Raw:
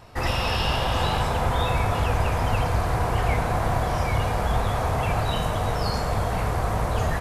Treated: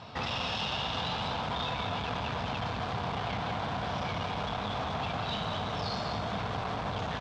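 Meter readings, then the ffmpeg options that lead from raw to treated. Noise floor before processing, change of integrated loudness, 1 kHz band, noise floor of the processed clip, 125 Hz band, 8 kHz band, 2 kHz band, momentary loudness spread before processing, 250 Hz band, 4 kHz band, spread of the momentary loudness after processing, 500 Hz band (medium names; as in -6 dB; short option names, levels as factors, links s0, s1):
-26 dBFS, -9.0 dB, -7.5 dB, -35 dBFS, -12.5 dB, -13.5 dB, -7.0 dB, 2 LU, -6.5 dB, -3.0 dB, 2 LU, -9.5 dB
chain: -filter_complex "[0:a]asoftclip=type=tanh:threshold=0.0422,highpass=120,equalizer=f=200:t=q:w=4:g=4,equalizer=f=350:t=q:w=4:g=-7,equalizer=f=520:t=q:w=4:g=-4,equalizer=f=1900:t=q:w=4:g=-5,equalizer=f=3500:t=q:w=4:g=7,lowpass=f=5400:w=0.5412,lowpass=f=5400:w=1.3066,asplit=2[s0][s1];[s1]aecho=0:1:195:0.473[s2];[s0][s2]amix=inputs=2:normalize=0,acompressor=threshold=0.0178:ratio=3,volume=1.5"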